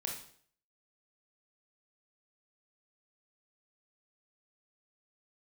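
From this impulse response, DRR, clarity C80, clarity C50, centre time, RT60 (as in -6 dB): -0.5 dB, 9.5 dB, 5.0 dB, 31 ms, 0.55 s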